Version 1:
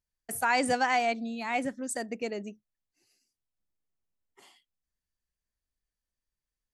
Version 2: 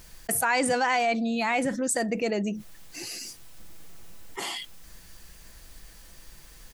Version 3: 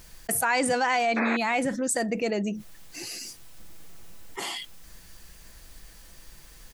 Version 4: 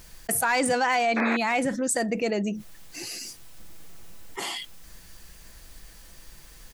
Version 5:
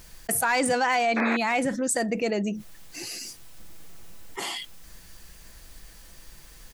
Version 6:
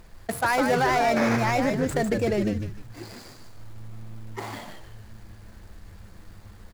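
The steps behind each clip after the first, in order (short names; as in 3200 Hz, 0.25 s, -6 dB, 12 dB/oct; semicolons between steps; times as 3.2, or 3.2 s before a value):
comb 6 ms, depth 30%; fast leveller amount 70%
painted sound noise, 1.16–1.37, 280–2600 Hz -28 dBFS
overloaded stage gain 16.5 dB; gain +1 dB
nothing audible
median filter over 15 samples; on a send: frequency-shifting echo 0.151 s, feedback 35%, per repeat -110 Hz, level -5 dB; on the sum: gain +1.5 dB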